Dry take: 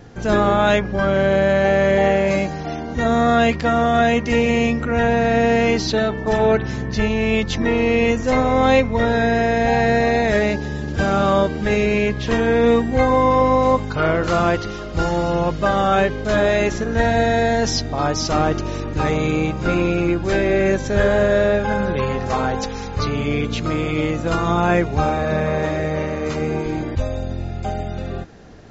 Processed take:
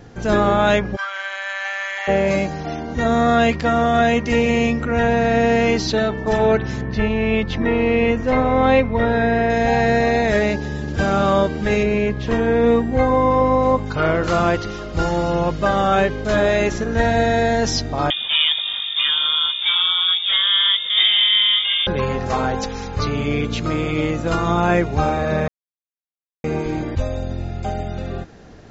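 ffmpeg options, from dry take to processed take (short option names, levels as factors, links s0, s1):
-filter_complex "[0:a]asplit=3[s0][s1][s2];[s0]afade=t=out:st=0.95:d=0.02[s3];[s1]highpass=f=1100:w=0.5412,highpass=f=1100:w=1.3066,afade=t=in:st=0.95:d=0.02,afade=t=out:st=2.07:d=0.02[s4];[s2]afade=t=in:st=2.07:d=0.02[s5];[s3][s4][s5]amix=inputs=3:normalize=0,asettb=1/sr,asplit=3[s6][s7][s8];[s6]atrim=end=6.814[s9];[s7]atrim=start=6.81:end=9.5,asetpts=PTS-STARTPTS,afade=t=in:d=0.004:c=qsin,afade=t=out:st=2.686:d=0.004:c=qsin,lowpass=3200[s10];[s8]atrim=start=9.496[s11];[s9][s10]acrossfade=d=0.004:c1=hsin:c2=qsin[s12];[s12][s11]acrossfade=d=0.004:c1=qsin:c2=hsin,asettb=1/sr,asplit=3[s13][s14][s15];[s13]atrim=end=11.834[s16];[s14]atrim=start=11.83:end=13.86,asetpts=PTS-STARTPTS,afade=t=in:d=0.004:c=qsin,afade=t=out:st=2.026:d=0.004:c=qsin,highshelf=f=2200:g=-7.5[s17];[s15]atrim=start=13.856[s18];[s16][s17]acrossfade=d=0.004:c1=hsin:c2=qsin[s19];[s19][s18]acrossfade=d=0.004:c1=qsin:c2=hsin,asettb=1/sr,asplit=3[s20][s21][s22];[s20]atrim=end=18.104[s23];[s21]atrim=start=18.1:end=21.87,asetpts=PTS-STARTPTS,afade=t=in:d=0.004:c=qsin,afade=t=out:st=3.766:d=0.004:c=qsin,lowpass=f=3100:t=q:w=0.5098,lowpass=f=3100:t=q:w=0.6013,lowpass=f=3100:t=q:w=0.9,lowpass=f=3100:t=q:w=2.563,afreqshift=-3700[s24];[s22]atrim=start=21.866[s25];[s23][s24]acrossfade=d=0.004:c1=hsin:c2=qsin[s26];[s26][s25]acrossfade=d=0.004:c1=qsin:c2=hsin,asplit=3[s27][s28][s29];[s27]atrim=end=25.48,asetpts=PTS-STARTPTS,afade=t=out:st=25.476:d=0.004:c=hsin[s30];[s28]atrim=start=25.48:end=26.44,asetpts=PTS-STARTPTS,volume=0[s31];[s29]atrim=start=26.44,asetpts=PTS-STARTPTS,afade=t=in:d=0.004:c=hsin[s32];[s30][s31][s32]concat=n=3:v=0:a=1"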